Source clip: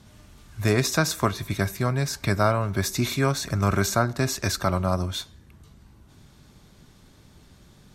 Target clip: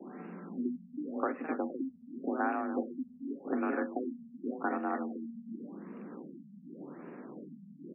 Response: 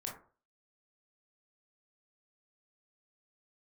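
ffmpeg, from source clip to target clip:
-filter_complex "[0:a]acompressor=threshold=-42dB:ratio=3,afreqshift=140,acrossover=split=210 2200:gain=0.251 1 0.0891[a][b][c];[a][b][c]amix=inputs=3:normalize=0,asplit=2[d][e];[e]aecho=0:1:45|286|467|511|519:0.211|0.211|0.224|0.398|0.119[f];[d][f]amix=inputs=2:normalize=0,afftfilt=real='re*lt(b*sr/1024,220*pow(2900/220,0.5+0.5*sin(2*PI*0.88*pts/sr)))':imag='im*lt(b*sr/1024,220*pow(2900/220,0.5+0.5*sin(2*PI*0.88*pts/sr)))':win_size=1024:overlap=0.75,volume=7.5dB"

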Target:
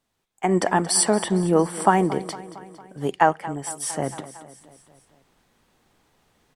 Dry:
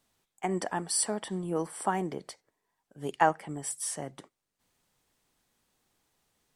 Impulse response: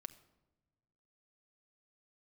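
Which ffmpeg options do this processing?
-af "asetnsamples=n=441:p=0,asendcmd='3.91 highshelf g -11.5',highshelf=f=4.2k:g=-5.5,aecho=1:1:228|456|684|912|1140:0.141|0.0819|0.0475|0.0276|0.016,dynaudnorm=f=290:g=3:m=14.5dB,volume=-1dB"

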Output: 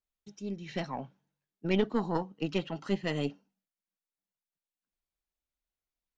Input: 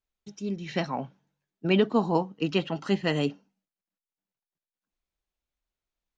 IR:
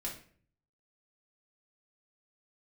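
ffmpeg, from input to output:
-af "aeval=exprs='0.299*(cos(1*acos(clip(val(0)/0.299,-1,1)))-cos(1*PI/2))+0.0944*(cos(2*acos(clip(val(0)/0.299,-1,1)))-cos(2*PI/2))':c=same,volume=-6dB"

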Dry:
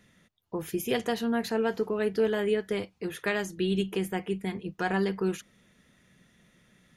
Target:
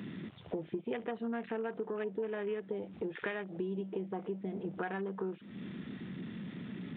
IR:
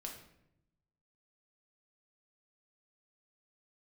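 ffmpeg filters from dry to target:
-af "aeval=exprs='val(0)+0.5*0.0141*sgn(val(0))':c=same,afwtdn=0.0178,highpass=190,acompressor=threshold=-42dB:ratio=6,aresample=8000,aresample=44100,volume=6.5dB"

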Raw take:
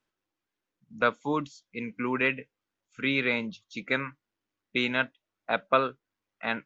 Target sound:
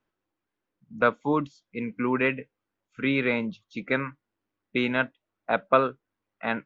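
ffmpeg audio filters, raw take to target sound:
-af "lowpass=f=1.5k:p=1,volume=4.5dB"

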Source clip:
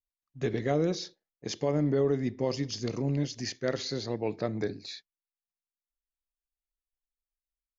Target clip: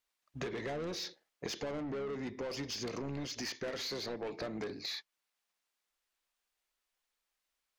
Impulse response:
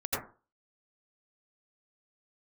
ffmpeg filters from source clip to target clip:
-filter_complex "[0:a]asplit=2[a][b];[b]highpass=f=720:p=1,volume=24dB,asoftclip=type=tanh:threshold=-16dB[c];[a][c]amix=inputs=2:normalize=0,lowpass=f=4.2k:p=1,volume=-6dB,acompressor=threshold=-35dB:ratio=6,asplit=2[d][e];[e]asetrate=22050,aresample=44100,atempo=2,volume=-15dB[f];[d][f]amix=inputs=2:normalize=0,volume=-3dB"

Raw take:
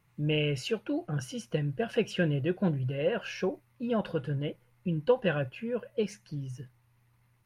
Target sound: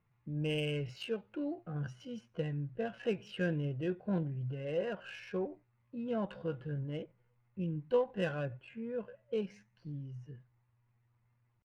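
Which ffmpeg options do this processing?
-af "adynamicsmooth=sensitivity=5:basefreq=2.8k,atempo=0.64,volume=-6.5dB"

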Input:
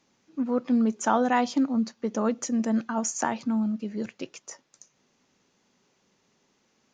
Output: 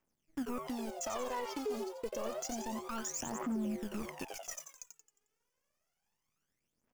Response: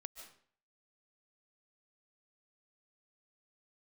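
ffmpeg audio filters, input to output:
-filter_complex "[0:a]asoftclip=type=tanh:threshold=-17.5dB,acrusher=bits=8:dc=4:mix=0:aa=0.000001,acompressor=threshold=-35dB:ratio=10,aeval=exprs='0.0501*(cos(1*acos(clip(val(0)/0.0501,-1,1)))-cos(1*PI/2))+0.00631*(cos(7*acos(clip(val(0)/0.0501,-1,1)))-cos(7*PI/2))':c=same,equalizer=f=3.9k:t=o:w=0.25:g=-13.5,asplit=6[a][b][c][d][e][f];[b]adelay=89,afreqshift=150,volume=-7.5dB[g];[c]adelay=178,afreqshift=300,volume=-14.6dB[h];[d]adelay=267,afreqshift=450,volume=-21.8dB[i];[e]adelay=356,afreqshift=600,volume=-28.9dB[j];[f]adelay=445,afreqshift=750,volume=-36dB[k];[a][g][h][i][j][k]amix=inputs=6:normalize=0,aphaser=in_gain=1:out_gain=1:delay=2.5:decay=0.7:speed=0.29:type=triangular,asettb=1/sr,asplit=3[l][m][n];[l]atrim=end=0.674[o];[m]atrim=start=0.67:end=3.18,asetpts=PTS-STARTPTS,afade=t=in:d=0.004:c=qsin,afade=t=out:st=2.506:d=0.004:c=qsin,equalizer=f=160:t=o:w=0.67:g=-8,equalizer=f=1.6k:t=o:w=0.67:g=-5,equalizer=f=4k:t=o:w=0.67:g=9[p];[n]atrim=start=3.176[q];[o][p]acrossfade=d=0.004:c1=hsin:c2=qsin[r];[r][q]acrossfade=d=0.004:c1=qsin:c2=hsin,alimiter=level_in=6.5dB:limit=-24dB:level=0:latency=1:release=16,volume=-6.5dB,volume=1dB"

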